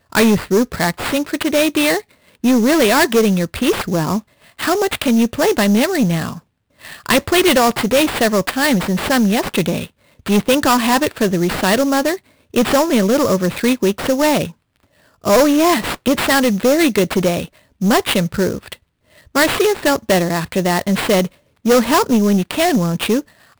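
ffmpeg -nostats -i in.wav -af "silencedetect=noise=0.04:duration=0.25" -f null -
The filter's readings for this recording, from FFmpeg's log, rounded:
silence_start: 2.00
silence_end: 2.44 | silence_duration: 0.44
silence_start: 4.20
silence_end: 4.59 | silence_duration: 0.40
silence_start: 6.38
silence_end: 6.85 | silence_duration: 0.47
silence_start: 9.85
silence_end: 10.26 | silence_duration: 0.41
silence_start: 12.16
silence_end: 12.54 | silence_duration: 0.38
silence_start: 14.50
silence_end: 15.24 | silence_duration: 0.74
silence_start: 17.45
silence_end: 17.81 | silence_duration: 0.36
silence_start: 18.73
silence_end: 19.35 | silence_duration: 0.62
silence_start: 21.27
silence_end: 21.65 | silence_duration: 0.38
silence_start: 23.21
silence_end: 23.60 | silence_duration: 0.39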